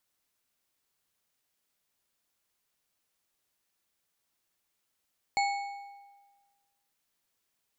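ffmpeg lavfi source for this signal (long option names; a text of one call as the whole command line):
ffmpeg -f lavfi -i "aevalsrc='0.0631*pow(10,-3*t/1.44)*sin(2*PI*803*t)+0.0355*pow(10,-3*t/1.062)*sin(2*PI*2213.9*t)+0.02*pow(10,-3*t/0.868)*sin(2*PI*4339.4*t)+0.0112*pow(10,-3*t/0.747)*sin(2*PI*7173.2*t)':duration=1.55:sample_rate=44100" out.wav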